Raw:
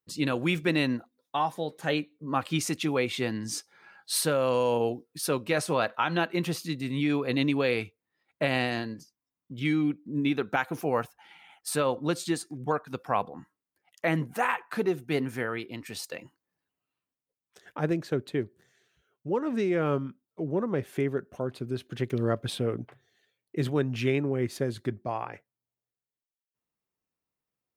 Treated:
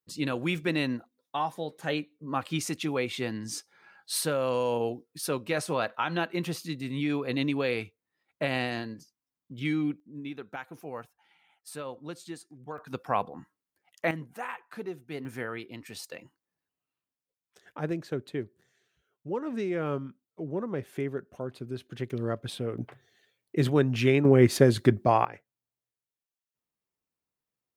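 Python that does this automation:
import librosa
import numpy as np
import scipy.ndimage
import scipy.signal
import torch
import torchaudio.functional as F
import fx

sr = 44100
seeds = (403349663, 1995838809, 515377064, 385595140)

y = fx.gain(x, sr, db=fx.steps((0.0, -2.5), (10.0, -12.0), (12.78, -0.5), (14.11, -10.0), (15.25, -4.0), (22.78, 3.5), (24.25, 10.0), (25.25, -2.0)))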